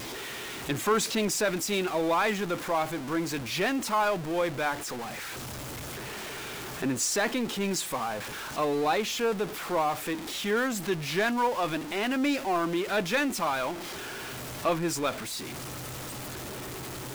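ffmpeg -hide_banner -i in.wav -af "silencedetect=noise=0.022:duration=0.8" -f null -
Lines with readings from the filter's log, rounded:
silence_start: 5.08
silence_end: 6.82 | silence_duration: 1.74
silence_start: 13.74
silence_end: 14.65 | silence_duration: 0.91
silence_start: 15.39
silence_end: 17.14 | silence_duration: 1.75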